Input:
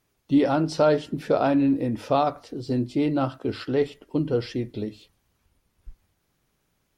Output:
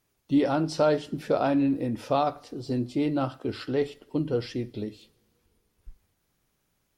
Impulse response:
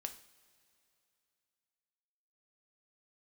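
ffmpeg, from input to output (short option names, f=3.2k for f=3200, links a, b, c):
-filter_complex "[0:a]asplit=2[a][b];[1:a]atrim=start_sample=2205,highshelf=f=3.8k:g=11[c];[b][c]afir=irnorm=-1:irlink=0,volume=-8.5dB[d];[a][d]amix=inputs=2:normalize=0,volume=-5dB"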